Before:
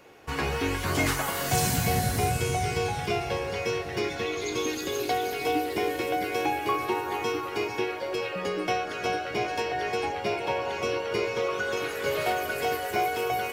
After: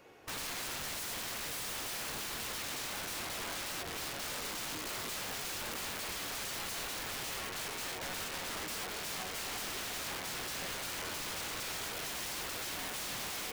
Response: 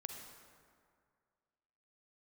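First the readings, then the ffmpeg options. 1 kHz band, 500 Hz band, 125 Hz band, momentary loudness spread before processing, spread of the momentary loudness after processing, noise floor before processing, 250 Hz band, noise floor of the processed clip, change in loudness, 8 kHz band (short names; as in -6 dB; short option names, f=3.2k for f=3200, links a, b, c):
-15.0 dB, -19.0 dB, -19.0 dB, 4 LU, 1 LU, -35 dBFS, -16.0 dB, -41 dBFS, -9.5 dB, -2.5 dB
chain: -filter_complex "[0:a]acrossover=split=4400[a][b];[b]acompressor=threshold=-46dB:ratio=4:attack=1:release=60[c];[a][c]amix=inputs=2:normalize=0,aeval=exprs='(mod(29.9*val(0)+1,2)-1)/29.9':c=same,volume=-5.5dB"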